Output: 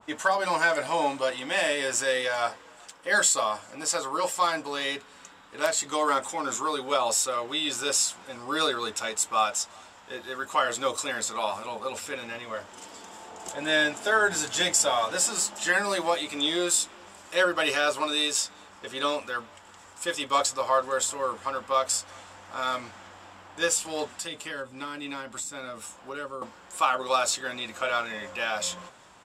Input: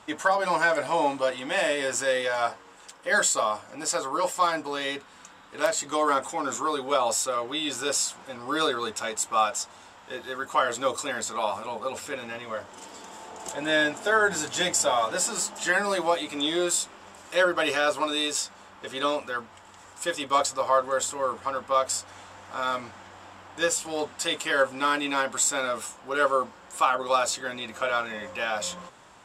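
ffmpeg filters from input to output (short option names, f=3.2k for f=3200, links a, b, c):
-filter_complex "[0:a]asettb=1/sr,asplit=3[a][b][c];[a]atrim=end=24.114[d];[b]atrim=start=24.11:end=26.42,asetpts=PTS-STARTPTS,afade=t=in:d=0.004:c=qsin,afade=t=out:st=2.306:d=0.004:c=qsin,acrossover=split=250[e][f];[f]acompressor=threshold=-34dB:ratio=6[g];[e][g]amix=inputs=2:normalize=0[h];[c]atrim=start=26.416[i];[d][h]acrossfade=d=0.004:c1=hsin:c2=qsin[j];[j][i]acrossfade=d=0.004:c1=qsin:c2=hsin,asplit=2[k][l];[l]adelay=379,volume=-28dB,highshelf=f=4k:g=-8.53[m];[k][m]amix=inputs=2:normalize=0,adynamicequalizer=threshold=0.0141:dfrequency=1600:dqfactor=0.7:tfrequency=1600:tqfactor=0.7:attack=5:release=100:ratio=0.375:range=2:mode=boostabove:tftype=highshelf,volume=-2dB"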